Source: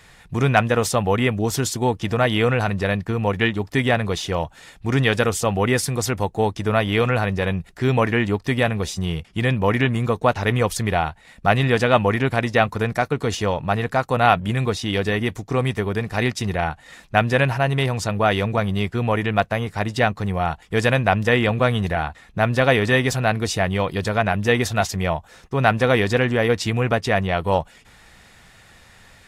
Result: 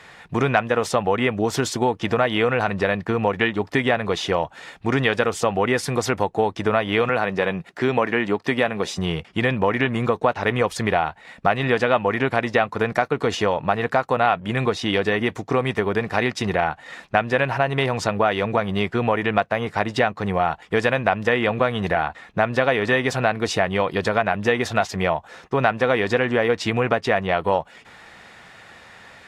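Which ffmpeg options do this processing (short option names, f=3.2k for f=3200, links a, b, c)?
-filter_complex "[0:a]asettb=1/sr,asplit=3[a][b][c];[a]atrim=end=7.094[d];[b]atrim=start=7.09:end=8.98,asetpts=PTS-STARTPTS,afade=t=in:d=0.004:c=qsin,afade=t=out:st=1.886:d=0.004:c=qsin,highpass=140[e];[c]atrim=start=8.976[f];[d][e]acrossfade=d=0.004:c1=hsin:c2=qsin[g];[g][f]acrossfade=d=0.004:c1=qsin:c2=hsin,highpass=f=390:p=1,aemphasis=mode=reproduction:type=75kf,acompressor=threshold=-26dB:ratio=3,volume=8.5dB"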